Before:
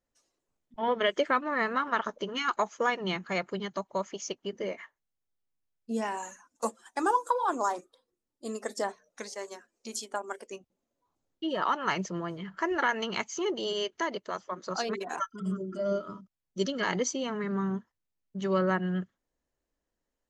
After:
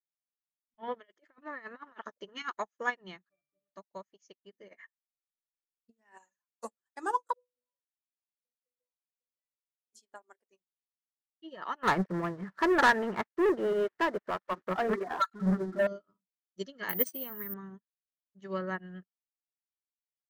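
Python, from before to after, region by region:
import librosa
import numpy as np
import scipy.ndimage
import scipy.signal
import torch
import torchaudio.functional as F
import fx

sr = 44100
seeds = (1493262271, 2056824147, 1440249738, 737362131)

y = fx.chain(x, sr, fx.highpass(hz=200.0, slope=12),
    fx.over_compress(threshold_db=-31.0, ratio=-0.5), at=(0.94, 2.42))
y = fx.chain(y, sr, fx.low_shelf(hz=280.0, db=-7.5),
    fx.leveller(passes=3),
    fx.octave_resonator(note='D', decay_s=0.45), at=(3.29, 3.74))
y = fx.chain(y, sr, fx.peak_eq(hz=1800.0, db=5.5, octaves=0.47),
    fx.over_compress(threshold_db=-36.0, ratio=-0.5), at=(4.68, 6.18))
y = fx.chain(y, sr, fx.formant_cascade(vowel='e'),
    fx.octave_resonator(note='B', decay_s=0.35), at=(7.33, 9.93))
y = fx.chain(y, sr, fx.crossing_spikes(level_db=-27.5),
    fx.lowpass(hz=1600.0, slope=24),
    fx.leveller(passes=3), at=(11.83, 15.87))
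y = fx.chain(y, sr, fx.high_shelf(hz=9200.0, db=-7.5),
    fx.resample_bad(factor=3, down='filtered', up='zero_stuff'), at=(16.89, 17.54))
y = fx.peak_eq(y, sr, hz=1800.0, db=6.5, octaves=0.26)
y = fx.upward_expand(y, sr, threshold_db=-47.0, expansion=2.5)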